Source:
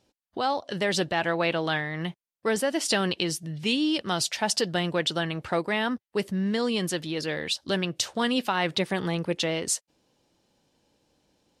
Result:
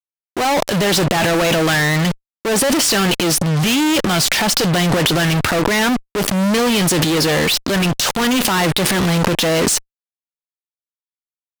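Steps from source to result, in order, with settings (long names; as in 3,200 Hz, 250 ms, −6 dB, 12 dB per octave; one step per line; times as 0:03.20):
fuzz pedal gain 48 dB, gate −44 dBFS
transient designer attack −4 dB, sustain +10 dB
level −1 dB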